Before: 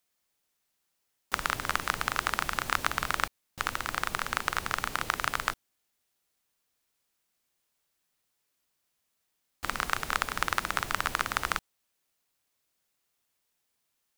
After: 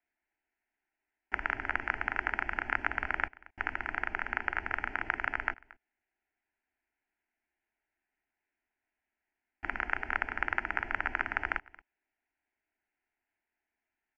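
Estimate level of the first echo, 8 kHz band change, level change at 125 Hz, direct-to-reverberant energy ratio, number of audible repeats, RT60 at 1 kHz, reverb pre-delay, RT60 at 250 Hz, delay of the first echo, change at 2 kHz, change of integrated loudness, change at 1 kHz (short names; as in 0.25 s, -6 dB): -22.0 dB, under -30 dB, -6.5 dB, none, 1, none, none, none, 0.227 s, +0.5 dB, -3.0 dB, -5.5 dB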